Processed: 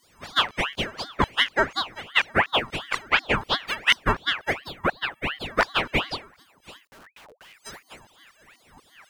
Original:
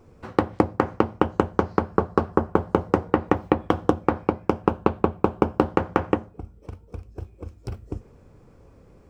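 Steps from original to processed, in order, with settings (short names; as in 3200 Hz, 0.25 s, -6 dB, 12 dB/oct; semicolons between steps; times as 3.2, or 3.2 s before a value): frequency quantiser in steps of 4 st; low shelf 230 Hz +6 dB; in parallel at -1 dB: compressor, threshold -27 dBFS, peak gain reduction 15 dB; on the sum: LFO high-pass saw down 4.1 Hz 280–3600 Hz; chorus voices 4, 0.35 Hz, delay 20 ms, depth 1.3 ms; 4.58–5.46 fixed phaser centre 1000 Hz, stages 6; 6.87–7.54 Schmitt trigger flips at -45 dBFS; ring modulator with a swept carrier 1500 Hz, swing 70%, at 2.8 Hz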